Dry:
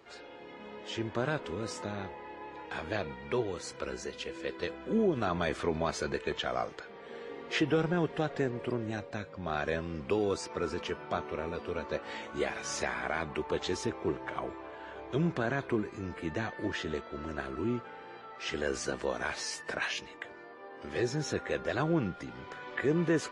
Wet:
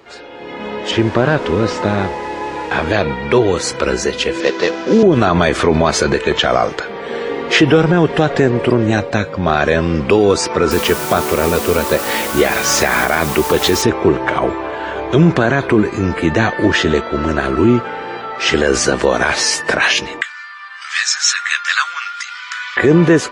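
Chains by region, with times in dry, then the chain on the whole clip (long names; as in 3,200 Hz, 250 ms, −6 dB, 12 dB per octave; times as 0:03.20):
0:00.91–0:02.87: linear delta modulator 64 kbit/s, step −47 dBFS + high-frequency loss of the air 130 metres
0:04.40–0:05.03: variable-slope delta modulation 32 kbit/s + high-pass filter 200 Hz
0:10.71–0:13.82: notch filter 940 Hz, Q 29 + bit-depth reduction 8 bits, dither triangular
0:20.21–0:22.77: Chebyshev band-pass filter 1,200–8,300 Hz, order 4 + high-shelf EQ 4,900 Hz +10.5 dB + floating-point word with a short mantissa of 8 bits
whole clip: automatic gain control gain up to 9 dB; boost into a limiter +14 dB; level −1 dB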